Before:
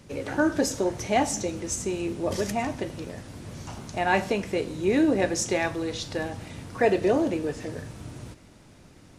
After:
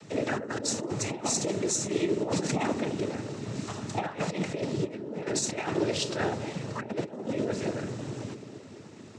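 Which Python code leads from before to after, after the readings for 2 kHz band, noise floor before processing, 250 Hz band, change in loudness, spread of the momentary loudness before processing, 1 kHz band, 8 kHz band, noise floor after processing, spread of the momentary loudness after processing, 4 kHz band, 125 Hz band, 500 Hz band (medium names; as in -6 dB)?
-6.5 dB, -52 dBFS, -4.5 dB, -4.5 dB, 17 LU, -6.0 dB, +0.5 dB, -47 dBFS, 8 LU, +0.5 dB, +0.5 dB, -5.0 dB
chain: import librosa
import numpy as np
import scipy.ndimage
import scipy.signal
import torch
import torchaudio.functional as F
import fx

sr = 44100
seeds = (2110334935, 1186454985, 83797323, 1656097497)

y = fx.over_compress(x, sr, threshold_db=-29.0, ratio=-0.5)
y = fx.echo_banded(y, sr, ms=220, feedback_pct=70, hz=330.0, wet_db=-8.5)
y = fx.noise_vocoder(y, sr, seeds[0], bands=12)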